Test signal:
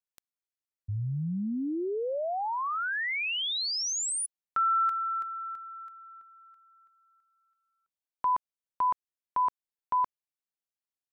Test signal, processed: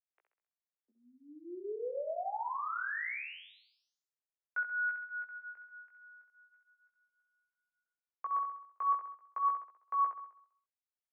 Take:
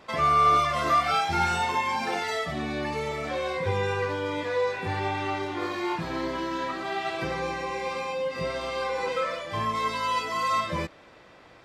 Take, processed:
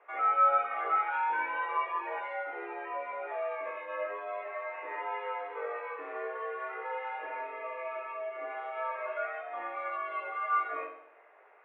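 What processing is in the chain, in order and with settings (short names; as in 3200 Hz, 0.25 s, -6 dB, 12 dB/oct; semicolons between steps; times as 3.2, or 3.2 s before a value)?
flutter echo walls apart 11.3 m, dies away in 0.65 s; mistuned SSB +120 Hz 280–2200 Hz; chorus 0.41 Hz, delay 16.5 ms, depth 4 ms; gain -4.5 dB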